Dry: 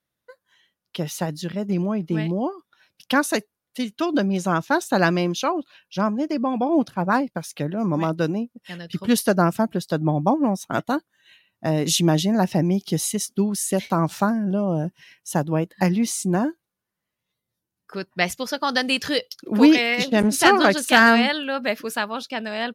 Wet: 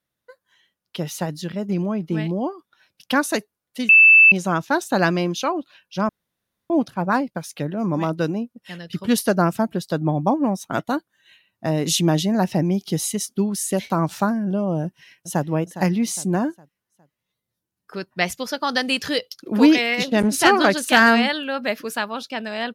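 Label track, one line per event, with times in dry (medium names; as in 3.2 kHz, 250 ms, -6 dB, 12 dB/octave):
3.890000	4.320000	bleep 2.64 kHz -7 dBFS
6.090000	6.700000	room tone
14.840000	15.450000	echo throw 410 ms, feedback 40%, level -12.5 dB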